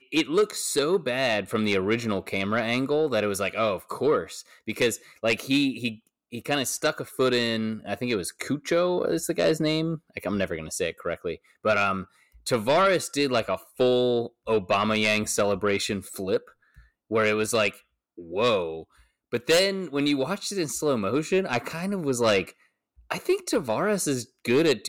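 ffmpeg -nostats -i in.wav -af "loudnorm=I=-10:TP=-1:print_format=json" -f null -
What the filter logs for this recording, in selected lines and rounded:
"input_i" : "-25.6",
"input_tp" : "-14.8",
"input_lra" : "2.2",
"input_thresh" : "-36.0",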